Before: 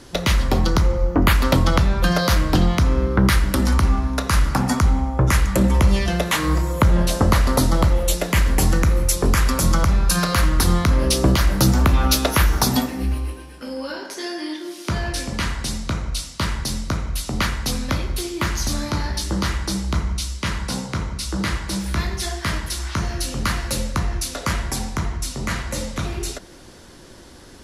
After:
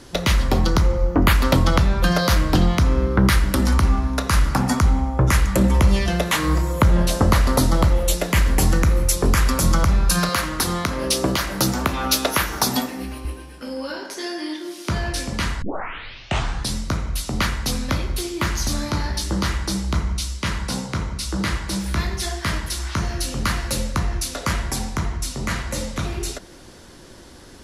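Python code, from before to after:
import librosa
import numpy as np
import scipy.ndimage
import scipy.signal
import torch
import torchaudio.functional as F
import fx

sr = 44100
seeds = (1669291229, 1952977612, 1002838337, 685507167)

y = fx.highpass(x, sr, hz=280.0, slope=6, at=(10.29, 13.25))
y = fx.edit(y, sr, fx.tape_start(start_s=15.62, length_s=1.13), tone=tone)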